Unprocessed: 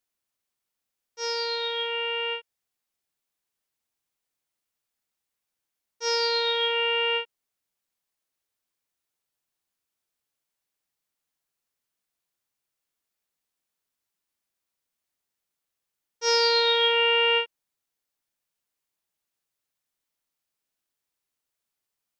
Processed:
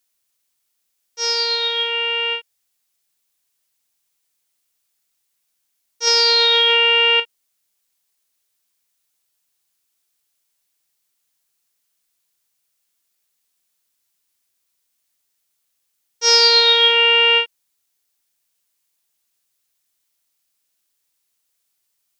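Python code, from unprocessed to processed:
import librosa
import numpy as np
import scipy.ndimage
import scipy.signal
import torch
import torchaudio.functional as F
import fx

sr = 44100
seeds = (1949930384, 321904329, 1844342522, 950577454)

y = fx.high_shelf(x, sr, hz=2400.0, db=11.0)
y = fx.env_flatten(y, sr, amount_pct=100, at=(6.07, 7.2))
y = y * librosa.db_to_amplitude(3.0)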